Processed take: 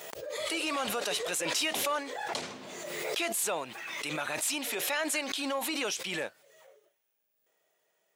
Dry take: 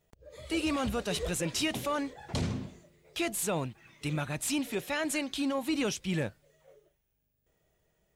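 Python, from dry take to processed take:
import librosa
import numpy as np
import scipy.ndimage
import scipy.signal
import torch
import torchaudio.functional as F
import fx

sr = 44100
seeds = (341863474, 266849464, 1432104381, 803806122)

p1 = scipy.signal.sosfilt(scipy.signal.butter(2, 550.0, 'highpass', fs=sr, output='sos'), x)
p2 = np.clip(p1, -10.0 ** (-29.5 / 20.0), 10.0 ** (-29.5 / 20.0))
p3 = p1 + (p2 * librosa.db_to_amplitude(-10.0))
y = fx.pre_swell(p3, sr, db_per_s=26.0)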